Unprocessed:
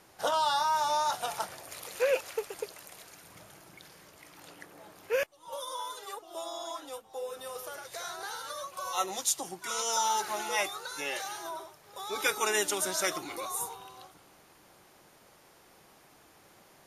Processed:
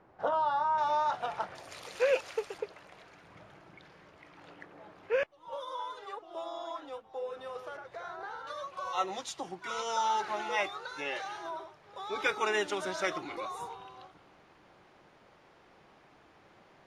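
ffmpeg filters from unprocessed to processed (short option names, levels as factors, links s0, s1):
-af "asetnsamples=n=441:p=0,asendcmd='0.78 lowpass f 2300;1.55 lowpass f 5400;2.58 lowpass f 2600;7.77 lowpass f 1600;8.47 lowpass f 3100',lowpass=1300"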